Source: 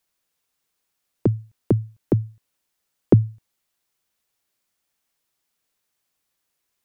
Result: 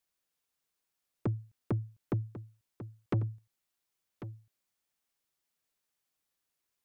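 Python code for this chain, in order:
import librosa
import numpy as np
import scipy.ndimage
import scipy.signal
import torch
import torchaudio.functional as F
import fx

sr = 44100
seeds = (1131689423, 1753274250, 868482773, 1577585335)

p1 = 10.0 ** (-17.5 / 20.0) * np.tanh(x / 10.0 ** (-17.5 / 20.0))
p2 = p1 + fx.echo_single(p1, sr, ms=1095, db=-13.0, dry=0)
y = F.gain(torch.from_numpy(p2), -8.0).numpy()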